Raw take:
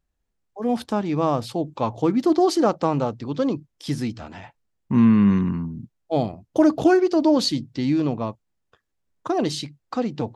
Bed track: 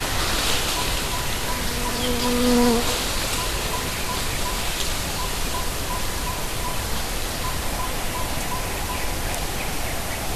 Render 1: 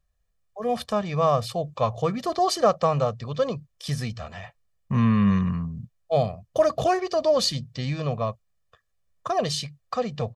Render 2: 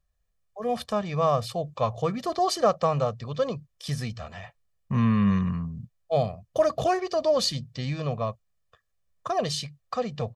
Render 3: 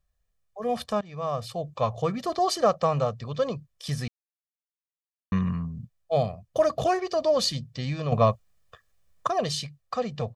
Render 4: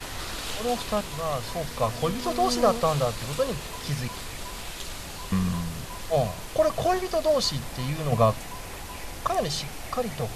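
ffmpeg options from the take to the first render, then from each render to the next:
ffmpeg -i in.wav -af "equalizer=frequency=320:width_type=o:width=0.83:gain=-9,aecho=1:1:1.7:0.69" out.wav
ffmpeg -i in.wav -af "volume=-2dB" out.wav
ffmpeg -i in.wav -filter_complex "[0:a]asplit=6[link_01][link_02][link_03][link_04][link_05][link_06];[link_01]atrim=end=1.01,asetpts=PTS-STARTPTS,afade=type=out:start_time=1.006:duration=0.004:curve=hsin:silence=0.16788[link_07];[link_02]atrim=start=1.01:end=4.08,asetpts=PTS-STARTPTS,afade=type=in:duration=0.78:silence=0.16788,afade=type=out:start_time=3.066:duration=0.004:curve=hsin[link_08];[link_03]atrim=start=4.08:end=5.32,asetpts=PTS-STARTPTS,volume=0[link_09];[link_04]atrim=start=5.32:end=8.122,asetpts=PTS-STARTPTS,afade=type=in:duration=0.004:curve=hsin[link_10];[link_05]atrim=start=8.118:end=9.272,asetpts=PTS-STARTPTS,volume=9dB[link_11];[link_06]atrim=start=9.268[link_12];[link_07][link_08][link_09][link_10]concat=n=4:v=0:a=1[link_13];[link_13][link_11]acrossfade=duration=0.004:curve1=hsin:curve2=hsin[link_14];[link_14][link_12]acrossfade=duration=0.004:curve1=hsin:curve2=hsin" out.wav
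ffmpeg -i in.wav -i bed.wav -filter_complex "[1:a]volume=-11.5dB[link_01];[0:a][link_01]amix=inputs=2:normalize=0" out.wav

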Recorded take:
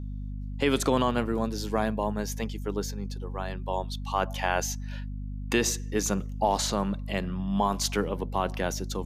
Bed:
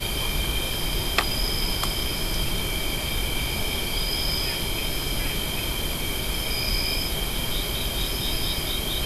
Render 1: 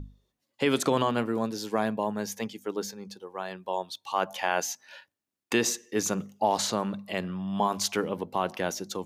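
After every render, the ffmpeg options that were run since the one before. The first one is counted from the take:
ffmpeg -i in.wav -af "bandreject=frequency=50:width_type=h:width=6,bandreject=frequency=100:width_type=h:width=6,bandreject=frequency=150:width_type=h:width=6,bandreject=frequency=200:width_type=h:width=6,bandreject=frequency=250:width_type=h:width=6" out.wav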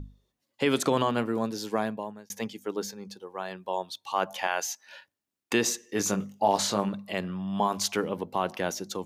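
ffmpeg -i in.wav -filter_complex "[0:a]asettb=1/sr,asplit=3[link_01][link_02][link_03];[link_01]atrim=end=4.474[link_04];[link_02]atrim=start=4.47:end=4.87,asetpts=PTS-STARTPTS,afade=type=in:duration=0.004:curve=qsin,afade=type=out:start_time=0.396:duration=0.004:curve=qsin,highpass=frequency=720:poles=1[link_05];[link_03]atrim=start=4.866[link_06];[link_04][link_05]acrossfade=duration=0.004:curve1=hsin:curve2=qsin[link_07];[link_07][link_06]acrossfade=duration=0.004:curve1=qsin:curve2=hsin,asettb=1/sr,asplit=3[link_08][link_09][link_10];[link_08]atrim=end=5.874[link_11];[link_09]atrim=start=5.87:end=6.89,asetpts=PTS-STARTPTS,afade=type=in:duration=0.004:curve=qsin,afade=type=out:start_time=1.016:duration=0.004:curve=qsin,asplit=2[link_12][link_13];[link_13]adelay=20,volume=-6dB[link_14];[link_12][link_14]amix=inputs=2:normalize=0,atrim=end_sample=44982[link_15];[link_10]atrim=start=6.886[link_16];[link_11][link_15]acrossfade=duration=0.004:curve1=hsin:curve2=qsin[link_17];[link_17][link_16]acrossfade=duration=0.004:curve1=qsin:curve2=hsin,asplit=2[link_18][link_19];[link_18]atrim=end=2.3,asetpts=PTS-STARTPTS,afade=type=out:start_time=1.73:duration=0.57[link_20];[link_19]atrim=start=2.3,asetpts=PTS-STARTPTS,afade=type=in:duration=0.004:curve=hsin[link_21];[link_20][link_21]concat=n=2:v=0:a=1" out.wav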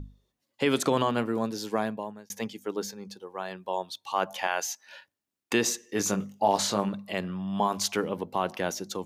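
ffmpeg -i in.wav -af anull out.wav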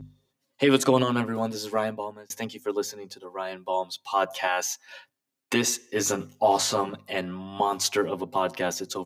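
ffmpeg -i in.wav -af "highpass=92,aecho=1:1:7.5:1" out.wav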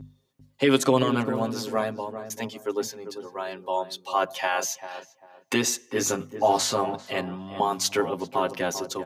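ffmpeg -i in.wav -filter_complex "[0:a]asplit=2[link_01][link_02];[link_02]adelay=394,lowpass=frequency=890:poles=1,volume=-9dB,asplit=2[link_03][link_04];[link_04]adelay=394,lowpass=frequency=890:poles=1,volume=0.29,asplit=2[link_05][link_06];[link_06]adelay=394,lowpass=frequency=890:poles=1,volume=0.29[link_07];[link_01][link_03][link_05][link_07]amix=inputs=4:normalize=0" out.wav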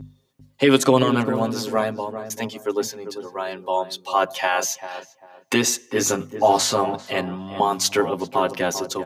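ffmpeg -i in.wav -af "volume=4.5dB" out.wav

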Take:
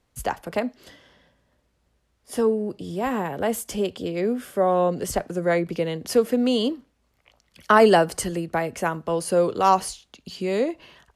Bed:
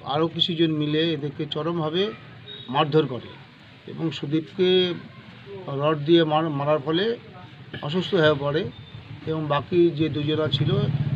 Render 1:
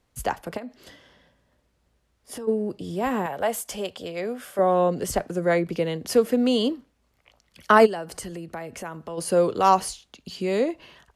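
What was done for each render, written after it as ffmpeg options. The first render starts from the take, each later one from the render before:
ffmpeg -i in.wav -filter_complex "[0:a]asplit=3[link_01][link_02][link_03];[link_01]afade=type=out:start_time=0.56:duration=0.02[link_04];[link_02]acompressor=threshold=-33dB:ratio=6:attack=3.2:release=140:knee=1:detection=peak,afade=type=in:start_time=0.56:duration=0.02,afade=type=out:start_time=2.47:duration=0.02[link_05];[link_03]afade=type=in:start_time=2.47:duration=0.02[link_06];[link_04][link_05][link_06]amix=inputs=3:normalize=0,asettb=1/sr,asplit=3[link_07][link_08][link_09];[link_07]atrim=end=3.264[link_10];[link_08]atrim=start=3.26:end=4.59,asetpts=PTS-STARTPTS,afade=type=in:duration=0.004:curve=qsin,afade=type=out:start_time=1.326:duration=0.004:curve=qsin,lowshelf=frequency=470:width_type=q:width=1.5:gain=-7.5[link_11];[link_09]atrim=start=4.586[link_12];[link_10][link_11]acrossfade=duration=0.004:curve1=hsin:curve2=qsin[link_13];[link_13][link_12]acrossfade=duration=0.004:curve1=qsin:curve2=hsin,asplit=3[link_14][link_15][link_16];[link_14]afade=type=out:start_time=7.85:duration=0.02[link_17];[link_15]acompressor=threshold=-35dB:ratio=2.5:attack=3.2:release=140:knee=1:detection=peak,afade=type=in:start_time=7.85:duration=0.02,afade=type=out:start_time=9.17:duration=0.02[link_18];[link_16]afade=type=in:start_time=9.17:duration=0.02[link_19];[link_17][link_18][link_19]amix=inputs=3:normalize=0" out.wav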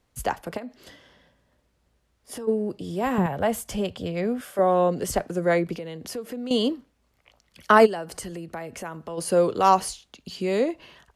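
ffmpeg -i in.wav -filter_complex "[0:a]asettb=1/sr,asplit=3[link_01][link_02][link_03];[link_01]atrim=end=3.184[link_04];[link_02]atrim=start=3.18:end=4.41,asetpts=PTS-STARTPTS,afade=type=in:duration=0.004:curve=qsin,afade=type=out:start_time=1.226:duration=0.004:curve=qsin,bass=frequency=250:gain=14,treble=frequency=4000:gain=-3[link_05];[link_03]atrim=start=4.406[link_06];[link_04][link_05]acrossfade=duration=0.004:curve1=hsin:curve2=qsin[link_07];[link_07][link_06]acrossfade=duration=0.004:curve1=qsin:curve2=hsin,asettb=1/sr,asplit=3[link_08][link_09][link_10];[link_08]atrim=end=5.744[link_11];[link_09]atrim=start=5.74:end=6.51,asetpts=PTS-STARTPTS,afade=type=in:duration=0.004:curve=qsin,afade=type=out:start_time=0.766:duration=0.004:curve=qsin,acompressor=threshold=-34dB:ratio=3:attack=3.2:release=140:knee=1:detection=peak[link_12];[link_10]atrim=start=6.506[link_13];[link_11][link_12]acrossfade=duration=0.004:curve1=hsin:curve2=qsin[link_14];[link_14][link_13]acrossfade=duration=0.004:curve1=qsin:curve2=hsin" out.wav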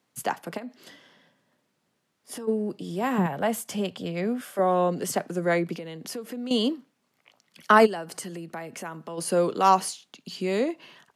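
ffmpeg -i in.wav -af "highpass=frequency=150:width=0.5412,highpass=frequency=150:width=1.3066,equalizer=frequency=520:width_type=o:width=0.94:gain=-3.5" out.wav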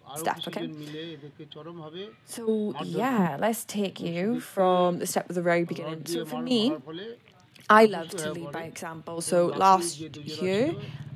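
ffmpeg -i in.wav -i bed.wav -filter_complex "[1:a]volume=-15.5dB[link_01];[0:a][link_01]amix=inputs=2:normalize=0" out.wav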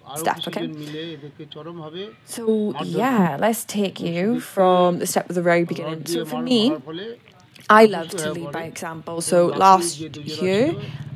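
ffmpeg -i in.wav -af "volume=6.5dB,alimiter=limit=-1dB:level=0:latency=1" out.wav

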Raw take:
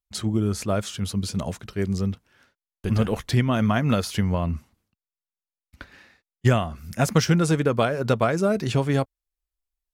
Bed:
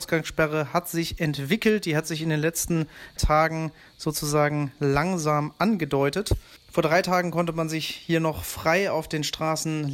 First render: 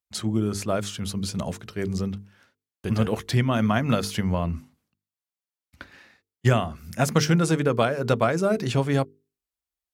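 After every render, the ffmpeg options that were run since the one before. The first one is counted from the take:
ffmpeg -i in.wav -af "highpass=78,bandreject=frequency=50:width_type=h:width=6,bandreject=frequency=100:width_type=h:width=6,bandreject=frequency=150:width_type=h:width=6,bandreject=frequency=200:width_type=h:width=6,bandreject=frequency=250:width_type=h:width=6,bandreject=frequency=300:width_type=h:width=6,bandreject=frequency=350:width_type=h:width=6,bandreject=frequency=400:width_type=h:width=6,bandreject=frequency=450:width_type=h:width=6" out.wav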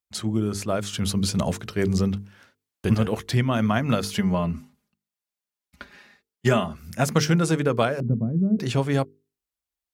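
ffmpeg -i in.wav -filter_complex "[0:a]asettb=1/sr,asplit=3[link_01][link_02][link_03];[link_01]atrim=end=0.934[link_04];[link_02]atrim=start=0.93:end=2.95,asetpts=PTS-STARTPTS,afade=type=in:duration=0.004:curve=qsin,afade=type=out:start_time=2.016:duration=0.004:curve=qsin,acontrast=33[link_05];[link_03]atrim=start=2.946[link_06];[link_04][link_05]acrossfade=duration=0.004:curve1=hsin:curve2=qsin[link_07];[link_07][link_06]acrossfade=duration=0.004:curve1=qsin:curve2=hsin,asettb=1/sr,asplit=3[link_08][link_09][link_10];[link_08]atrim=end=4.134[link_11];[link_09]atrim=start=4.13:end=6.74,asetpts=PTS-STARTPTS,afade=type=in:duration=0.004:curve=qsin,afade=type=out:start_time=2.606:duration=0.004:curve=qsin,aecho=1:1:4.9:0.65,atrim=end_sample=115101[link_12];[link_10]atrim=start=6.736[link_13];[link_11][link_12]acrossfade=duration=0.004:curve1=hsin:curve2=qsin[link_14];[link_14][link_13]acrossfade=duration=0.004:curve1=qsin:curve2=hsin,asettb=1/sr,asplit=3[link_15][link_16][link_17];[link_15]atrim=end=8.004[link_18];[link_16]atrim=start=8:end=8.59,asetpts=PTS-STARTPTS,afade=type=in:duration=0.004:curve=qsin,afade=type=out:start_time=0.586:duration=0.004:curve=qsin,lowpass=frequency=200:width_type=q:width=2.2[link_19];[link_17]atrim=start=8.586[link_20];[link_18][link_19]acrossfade=duration=0.004:curve1=hsin:curve2=qsin[link_21];[link_21][link_20]acrossfade=duration=0.004:curve1=qsin:curve2=hsin" out.wav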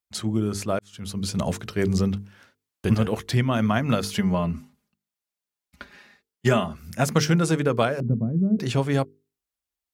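ffmpeg -i in.wav -filter_complex "[0:a]asplit=2[link_01][link_02];[link_01]atrim=end=0.79,asetpts=PTS-STARTPTS,afade=type=out:start_time=0.786:duration=0.004:curve=hsin[link_03];[link_02]atrim=start=0.79,asetpts=PTS-STARTPTS,afade=type=in:duration=0.75[link_04];[link_03][link_04]concat=n=2:v=0:a=1" out.wav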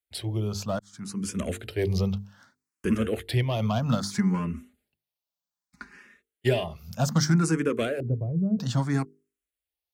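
ffmpeg -i in.wav -filter_complex "[0:a]acrossover=split=550|2700[link_01][link_02][link_03];[link_02]volume=28dB,asoftclip=hard,volume=-28dB[link_04];[link_01][link_04][link_03]amix=inputs=3:normalize=0,asplit=2[link_05][link_06];[link_06]afreqshift=0.63[link_07];[link_05][link_07]amix=inputs=2:normalize=1" out.wav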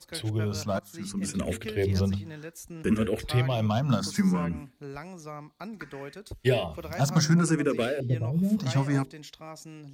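ffmpeg -i in.wav -i bed.wav -filter_complex "[1:a]volume=-17.5dB[link_01];[0:a][link_01]amix=inputs=2:normalize=0" out.wav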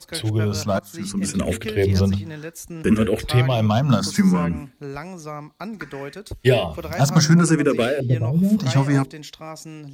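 ffmpeg -i in.wav -af "volume=7.5dB" out.wav

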